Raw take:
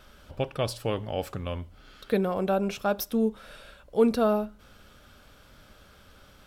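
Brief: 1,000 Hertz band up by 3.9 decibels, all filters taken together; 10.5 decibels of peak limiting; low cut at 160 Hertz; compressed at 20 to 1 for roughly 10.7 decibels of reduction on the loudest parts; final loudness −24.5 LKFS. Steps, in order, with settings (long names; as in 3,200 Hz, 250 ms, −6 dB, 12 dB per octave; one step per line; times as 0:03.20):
high-pass filter 160 Hz
parametric band 1,000 Hz +5.5 dB
downward compressor 20 to 1, threshold −26 dBFS
level +13.5 dB
brickwall limiter −12.5 dBFS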